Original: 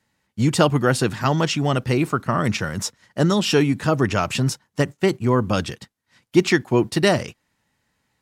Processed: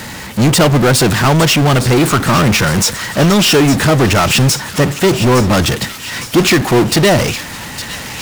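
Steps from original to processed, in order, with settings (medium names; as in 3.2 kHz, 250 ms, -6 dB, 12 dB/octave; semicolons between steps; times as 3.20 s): power-law waveshaper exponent 0.35; feedback echo behind a high-pass 860 ms, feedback 57%, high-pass 1.9 kHz, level -10 dB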